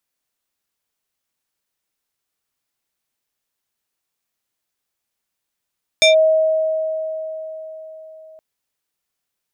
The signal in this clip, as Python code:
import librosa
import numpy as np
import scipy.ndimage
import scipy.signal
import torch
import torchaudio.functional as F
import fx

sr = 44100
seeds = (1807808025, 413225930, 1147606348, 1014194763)

y = fx.fm2(sr, length_s=2.37, level_db=-7.5, carrier_hz=634.0, ratio=4.71, index=1.7, index_s=0.13, decay_s=4.36, shape='linear')